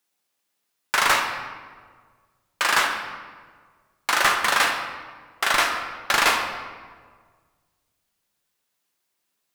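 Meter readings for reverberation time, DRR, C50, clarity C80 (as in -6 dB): 1.6 s, 2.0 dB, 5.0 dB, 7.0 dB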